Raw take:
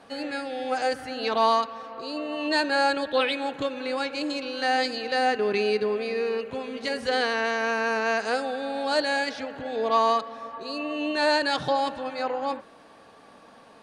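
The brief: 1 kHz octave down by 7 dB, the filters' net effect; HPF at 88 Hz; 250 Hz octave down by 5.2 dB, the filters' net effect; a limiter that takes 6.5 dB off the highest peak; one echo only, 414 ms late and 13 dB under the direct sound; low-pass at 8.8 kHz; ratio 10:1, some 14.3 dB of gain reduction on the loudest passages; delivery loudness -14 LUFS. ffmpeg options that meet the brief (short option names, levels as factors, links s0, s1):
-af "highpass=88,lowpass=8800,equalizer=f=250:t=o:g=-5.5,equalizer=f=1000:t=o:g=-9,acompressor=threshold=0.0141:ratio=10,alimiter=level_in=2.82:limit=0.0631:level=0:latency=1,volume=0.355,aecho=1:1:414:0.224,volume=23.7"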